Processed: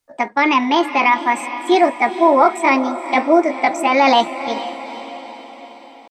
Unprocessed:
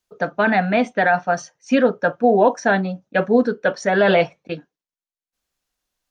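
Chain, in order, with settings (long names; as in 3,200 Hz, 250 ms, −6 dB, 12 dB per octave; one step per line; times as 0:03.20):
pitch shifter +5.5 semitones
feedback delay with all-pass diffusion 456 ms, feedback 54%, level −12.5 dB
level +2.5 dB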